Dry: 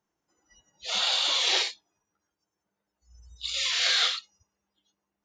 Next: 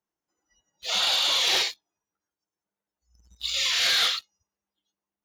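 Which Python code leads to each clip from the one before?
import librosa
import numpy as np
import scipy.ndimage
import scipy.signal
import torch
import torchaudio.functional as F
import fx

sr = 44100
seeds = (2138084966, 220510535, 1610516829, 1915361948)

y = fx.peak_eq(x, sr, hz=110.0, db=-3.0, octaves=2.0)
y = fx.leveller(y, sr, passes=2)
y = y * librosa.db_to_amplitude(-4.0)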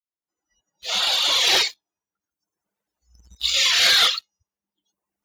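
y = fx.fade_in_head(x, sr, length_s=1.74)
y = fx.dereverb_blind(y, sr, rt60_s=0.76)
y = y * librosa.db_to_amplitude(8.0)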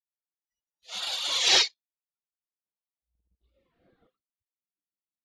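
y = fx.filter_sweep_lowpass(x, sr, from_hz=10000.0, to_hz=290.0, start_s=1.27, end_s=3.64, q=1.7)
y = fx.upward_expand(y, sr, threshold_db=-29.0, expansion=2.5)
y = y * librosa.db_to_amplitude(-3.5)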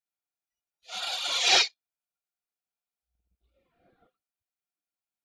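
y = fx.small_body(x, sr, hz=(730.0, 1400.0, 2400.0), ring_ms=30, db=10)
y = y * librosa.db_to_amplitude(-1.5)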